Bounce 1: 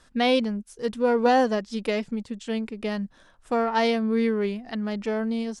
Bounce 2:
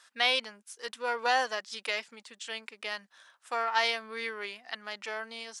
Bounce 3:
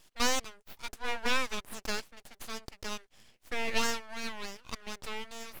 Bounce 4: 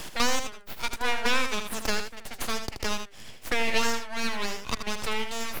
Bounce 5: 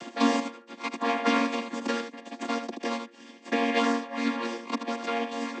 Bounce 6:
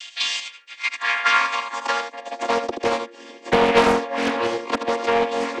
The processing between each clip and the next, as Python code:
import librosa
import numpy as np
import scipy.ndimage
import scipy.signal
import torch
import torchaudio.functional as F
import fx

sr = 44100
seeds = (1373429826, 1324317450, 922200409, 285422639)

y1 = scipy.signal.sosfilt(scipy.signal.butter(2, 1200.0, 'highpass', fs=sr, output='sos'), x)
y1 = F.gain(torch.from_numpy(y1), 2.0).numpy()
y2 = np.abs(y1)
y3 = y2 + 10.0 ** (-8.5 / 20.0) * np.pad(y2, (int(78 * sr / 1000.0), 0))[:len(y2)]
y3 = fx.band_squash(y3, sr, depth_pct=70)
y3 = F.gain(torch.from_numpy(y3), 6.0).numpy()
y4 = fx.chord_vocoder(y3, sr, chord='minor triad', root=58)
y4 = F.gain(torch.from_numpy(y4), 3.0).numpy()
y5 = fx.filter_sweep_highpass(y4, sr, from_hz=3000.0, to_hz=420.0, start_s=0.41, end_s=2.73, q=2.0)
y5 = fx.doppler_dist(y5, sr, depth_ms=0.47)
y5 = F.gain(torch.from_numpy(y5), 7.5).numpy()